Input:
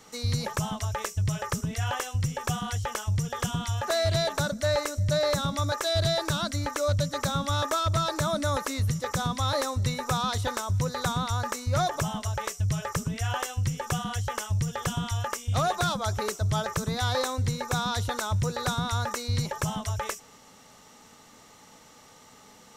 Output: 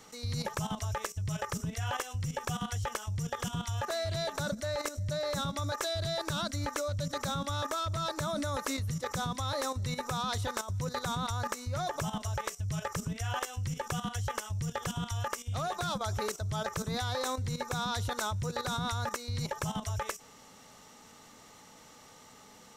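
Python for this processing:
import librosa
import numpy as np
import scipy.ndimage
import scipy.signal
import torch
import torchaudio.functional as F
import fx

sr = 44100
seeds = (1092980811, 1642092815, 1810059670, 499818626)

y = fx.level_steps(x, sr, step_db=11)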